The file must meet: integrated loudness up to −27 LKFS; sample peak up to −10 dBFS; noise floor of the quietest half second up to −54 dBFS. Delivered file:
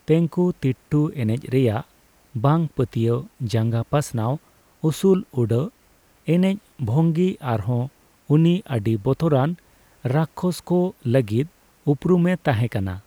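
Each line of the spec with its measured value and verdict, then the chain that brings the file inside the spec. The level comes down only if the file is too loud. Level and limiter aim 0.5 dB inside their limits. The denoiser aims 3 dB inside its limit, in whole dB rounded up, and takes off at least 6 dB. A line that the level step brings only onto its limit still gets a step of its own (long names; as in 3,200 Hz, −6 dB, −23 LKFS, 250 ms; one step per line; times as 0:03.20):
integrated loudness −22.0 LKFS: out of spec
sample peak −6.0 dBFS: out of spec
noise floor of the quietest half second −57 dBFS: in spec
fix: level −5.5 dB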